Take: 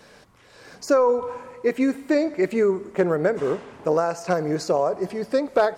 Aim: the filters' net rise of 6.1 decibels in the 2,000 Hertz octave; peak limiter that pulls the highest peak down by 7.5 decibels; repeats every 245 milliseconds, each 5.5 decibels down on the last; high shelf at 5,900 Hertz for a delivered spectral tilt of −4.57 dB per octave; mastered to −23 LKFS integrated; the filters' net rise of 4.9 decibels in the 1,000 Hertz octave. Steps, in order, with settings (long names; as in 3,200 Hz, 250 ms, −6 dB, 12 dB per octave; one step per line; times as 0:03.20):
parametric band 1,000 Hz +5 dB
parametric band 2,000 Hz +5.5 dB
high-shelf EQ 5,900 Hz +5 dB
brickwall limiter −12 dBFS
repeating echo 245 ms, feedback 53%, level −5.5 dB
level −1 dB